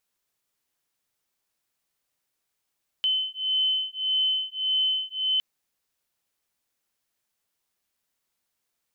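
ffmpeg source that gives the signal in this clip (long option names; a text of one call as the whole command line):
ffmpeg -f lavfi -i "aevalsrc='0.0501*(sin(2*PI*3050*t)+sin(2*PI*3051.7*t))':duration=2.36:sample_rate=44100" out.wav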